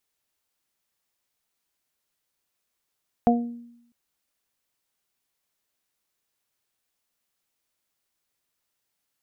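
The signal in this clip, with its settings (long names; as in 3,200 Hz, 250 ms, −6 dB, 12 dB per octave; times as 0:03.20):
harmonic partials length 0.65 s, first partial 237 Hz, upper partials −6/1 dB, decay 0.81 s, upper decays 0.42/0.27 s, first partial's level −15.5 dB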